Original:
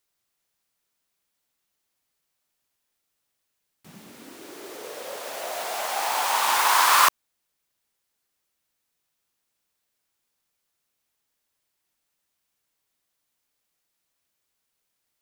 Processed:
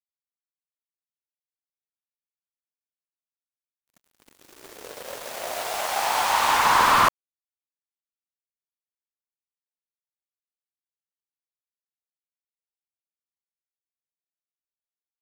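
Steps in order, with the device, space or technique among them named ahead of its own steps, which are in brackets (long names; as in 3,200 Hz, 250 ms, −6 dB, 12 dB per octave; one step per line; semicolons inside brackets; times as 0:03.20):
early transistor amplifier (dead-zone distortion −39 dBFS; slew-rate limiting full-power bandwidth 180 Hz)
level +4 dB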